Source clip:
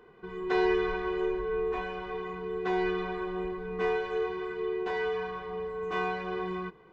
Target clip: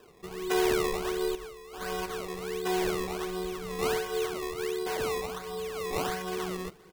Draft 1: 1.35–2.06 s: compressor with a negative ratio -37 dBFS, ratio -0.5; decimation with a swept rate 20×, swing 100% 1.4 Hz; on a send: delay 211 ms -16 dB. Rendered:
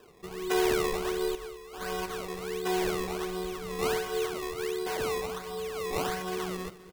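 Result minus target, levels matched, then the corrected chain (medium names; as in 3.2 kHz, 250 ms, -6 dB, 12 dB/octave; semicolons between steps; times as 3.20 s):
echo-to-direct +9.5 dB
1.35–2.06 s: compressor with a negative ratio -37 dBFS, ratio -0.5; decimation with a swept rate 20×, swing 100% 1.4 Hz; on a send: delay 211 ms -25.5 dB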